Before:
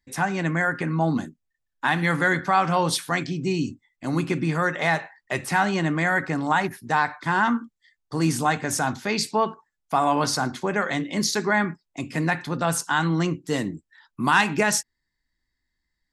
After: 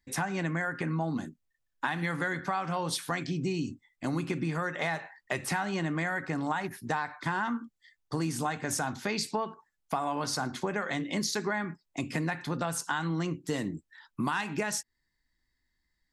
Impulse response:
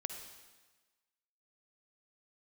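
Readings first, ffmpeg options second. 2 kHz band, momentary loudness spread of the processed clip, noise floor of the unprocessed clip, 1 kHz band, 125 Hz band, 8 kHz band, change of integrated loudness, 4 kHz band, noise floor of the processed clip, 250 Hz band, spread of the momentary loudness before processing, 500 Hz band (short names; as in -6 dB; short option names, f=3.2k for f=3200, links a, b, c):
-9.5 dB, 6 LU, -80 dBFS, -10.0 dB, -7.5 dB, -7.0 dB, -8.5 dB, -7.5 dB, -80 dBFS, -7.5 dB, 7 LU, -8.0 dB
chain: -af "acompressor=threshold=-28dB:ratio=6"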